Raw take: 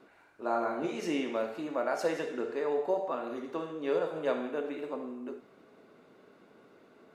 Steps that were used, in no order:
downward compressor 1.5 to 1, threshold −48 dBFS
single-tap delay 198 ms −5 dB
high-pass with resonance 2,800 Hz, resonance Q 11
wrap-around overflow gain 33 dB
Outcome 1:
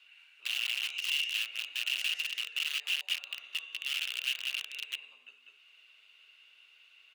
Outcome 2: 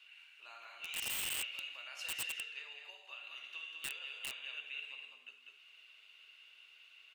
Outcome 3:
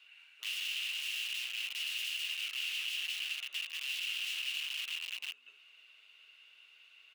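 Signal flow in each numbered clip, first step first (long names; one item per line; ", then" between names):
single-tap delay, then downward compressor, then wrap-around overflow, then high-pass with resonance
single-tap delay, then downward compressor, then high-pass with resonance, then wrap-around overflow
single-tap delay, then wrap-around overflow, then high-pass with resonance, then downward compressor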